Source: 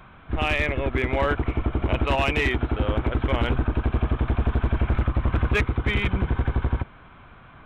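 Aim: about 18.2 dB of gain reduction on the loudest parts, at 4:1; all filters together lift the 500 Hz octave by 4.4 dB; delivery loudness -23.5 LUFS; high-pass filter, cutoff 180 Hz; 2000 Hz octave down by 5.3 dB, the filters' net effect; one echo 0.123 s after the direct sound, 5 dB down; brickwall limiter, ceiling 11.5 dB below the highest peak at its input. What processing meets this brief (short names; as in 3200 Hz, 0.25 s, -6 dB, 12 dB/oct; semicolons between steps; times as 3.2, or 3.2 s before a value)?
HPF 180 Hz; bell 500 Hz +6 dB; bell 2000 Hz -7 dB; compressor 4:1, threshold -41 dBFS; limiter -37 dBFS; echo 0.123 s -5 dB; gain +23 dB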